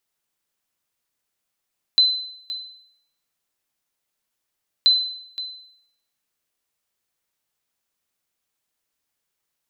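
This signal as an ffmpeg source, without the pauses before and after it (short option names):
-f lavfi -i "aevalsrc='0.355*(sin(2*PI*4040*mod(t,2.88))*exp(-6.91*mod(t,2.88)/0.71)+0.178*sin(2*PI*4040*max(mod(t,2.88)-0.52,0))*exp(-6.91*max(mod(t,2.88)-0.52,0)/0.71))':d=5.76:s=44100"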